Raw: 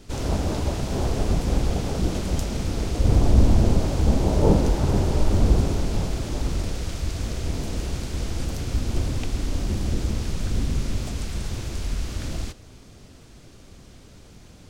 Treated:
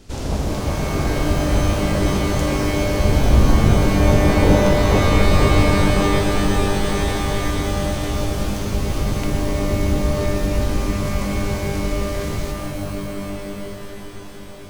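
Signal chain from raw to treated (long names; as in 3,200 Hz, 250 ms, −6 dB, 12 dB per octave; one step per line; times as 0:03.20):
on a send: delay with a band-pass on its return 473 ms, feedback 73%, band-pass 800 Hz, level −4 dB
on the sum: reverb with rising layers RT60 3.4 s, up +12 semitones, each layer −2 dB, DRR 4 dB
level +1 dB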